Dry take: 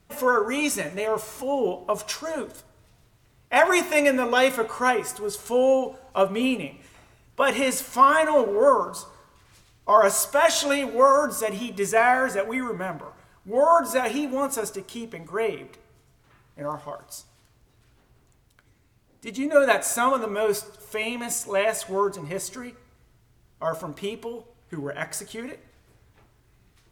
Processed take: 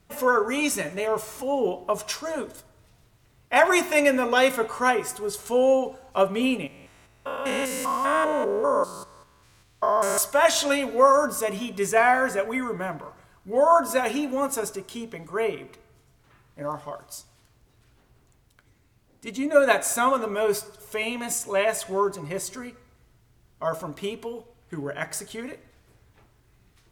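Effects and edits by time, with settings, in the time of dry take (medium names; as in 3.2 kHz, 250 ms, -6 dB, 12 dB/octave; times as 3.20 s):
6.67–10.18 s: spectrogram pixelated in time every 200 ms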